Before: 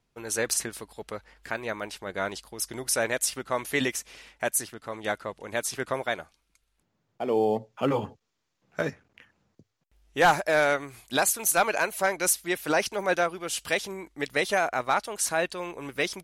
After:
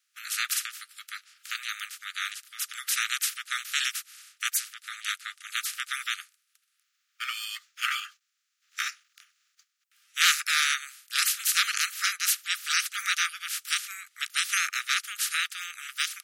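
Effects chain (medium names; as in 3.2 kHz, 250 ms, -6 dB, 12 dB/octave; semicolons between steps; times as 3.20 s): spectral peaks clipped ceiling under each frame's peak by 29 dB; Chebyshev high-pass 1.2 kHz, order 10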